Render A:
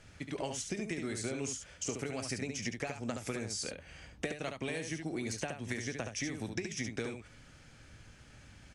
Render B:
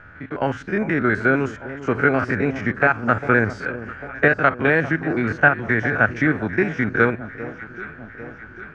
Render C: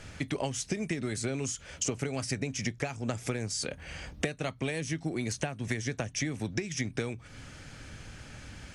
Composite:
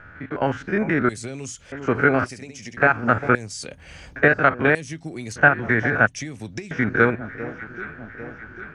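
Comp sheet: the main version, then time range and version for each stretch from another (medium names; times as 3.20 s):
B
1.09–1.72 s: from C
2.26–2.77 s: from A
3.35–4.16 s: from C
4.75–5.36 s: from C
6.07–6.71 s: from C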